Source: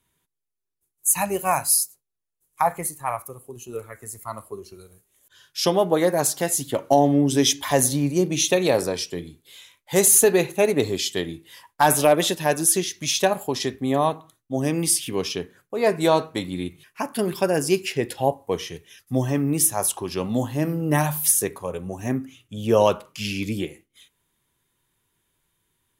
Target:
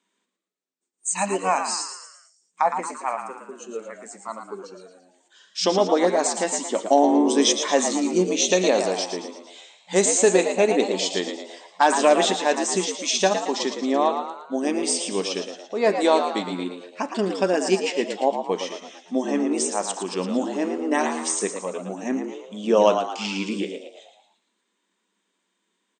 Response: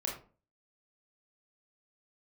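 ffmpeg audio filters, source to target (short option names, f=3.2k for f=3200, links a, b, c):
-filter_complex "[0:a]asplit=7[a][b][c][d][e][f][g];[b]adelay=113,afreqshift=87,volume=-8dB[h];[c]adelay=226,afreqshift=174,volume=-14.4dB[i];[d]adelay=339,afreqshift=261,volume=-20.8dB[j];[e]adelay=452,afreqshift=348,volume=-27.1dB[k];[f]adelay=565,afreqshift=435,volume=-33.5dB[l];[g]adelay=678,afreqshift=522,volume=-39.9dB[m];[a][h][i][j][k][l][m]amix=inputs=7:normalize=0,afftfilt=real='re*between(b*sr/4096,180,8800)':imag='im*between(b*sr/4096,180,8800)':win_size=4096:overlap=0.75"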